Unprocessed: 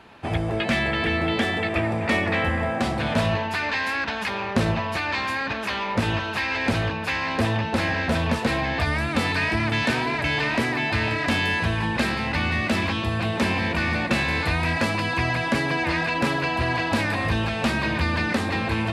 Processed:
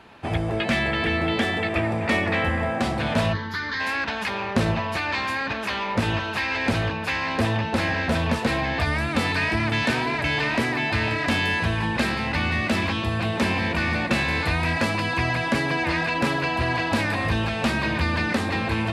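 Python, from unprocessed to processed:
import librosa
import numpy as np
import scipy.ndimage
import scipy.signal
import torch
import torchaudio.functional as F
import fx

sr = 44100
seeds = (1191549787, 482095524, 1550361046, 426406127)

y = fx.fixed_phaser(x, sr, hz=2600.0, stages=6, at=(3.32, 3.79), fade=0.02)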